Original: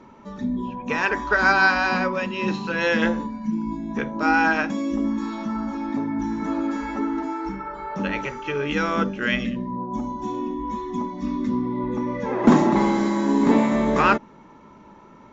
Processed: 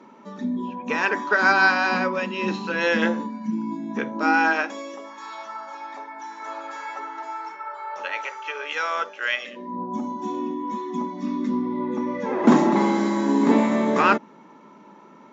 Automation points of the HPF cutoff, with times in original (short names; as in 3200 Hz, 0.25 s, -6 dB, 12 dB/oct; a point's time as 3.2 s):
HPF 24 dB/oct
4.11 s 190 Hz
5.1 s 580 Hz
9.41 s 580 Hz
9.82 s 180 Hz